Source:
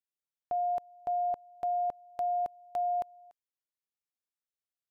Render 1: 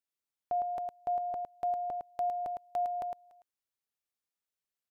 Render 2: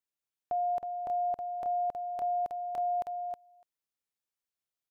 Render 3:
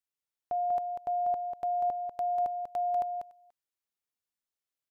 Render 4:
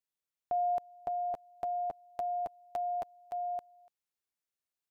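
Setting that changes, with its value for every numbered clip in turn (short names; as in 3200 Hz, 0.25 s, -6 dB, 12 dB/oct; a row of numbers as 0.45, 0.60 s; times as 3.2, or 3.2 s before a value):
echo, time: 0.108, 0.318, 0.193, 0.569 s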